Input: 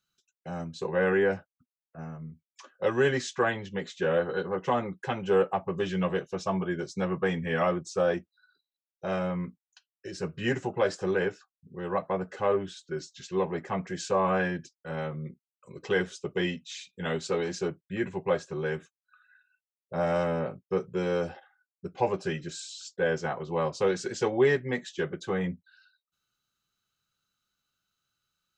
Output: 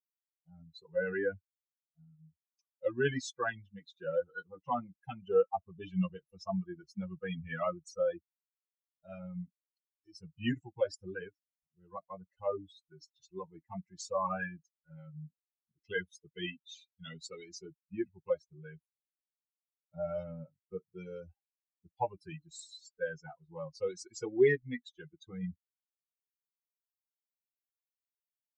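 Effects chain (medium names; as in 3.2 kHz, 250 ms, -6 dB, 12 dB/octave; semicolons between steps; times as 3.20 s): expander on every frequency bin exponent 3; peaking EQ 260 Hz +3 dB 0.77 oct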